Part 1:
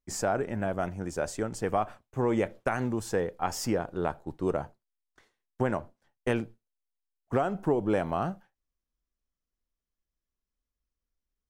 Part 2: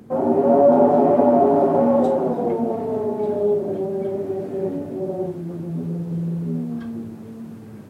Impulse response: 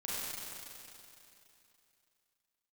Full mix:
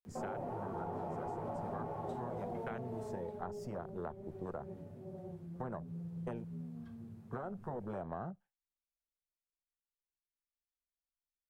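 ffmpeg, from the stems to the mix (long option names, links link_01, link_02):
-filter_complex "[0:a]afwtdn=0.02,volume=-5dB[link_01];[1:a]asubboost=boost=4.5:cutoff=150,adelay=50,volume=-10dB,afade=type=out:start_time=2.68:duration=0.74:silence=0.298538[link_02];[link_01][link_02]amix=inputs=2:normalize=0,afftfilt=real='re*lt(hypot(re,im),0.224)':imag='im*lt(hypot(re,im),0.224)':win_size=1024:overlap=0.75,equalizer=frequency=290:width=7.6:gain=-12.5,acrossover=split=110|660[link_03][link_04][link_05];[link_03]acompressor=threshold=-55dB:ratio=4[link_06];[link_04]acompressor=threshold=-42dB:ratio=4[link_07];[link_05]acompressor=threshold=-46dB:ratio=4[link_08];[link_06][link_07][link_08]amix=inputs=3:normalize=0"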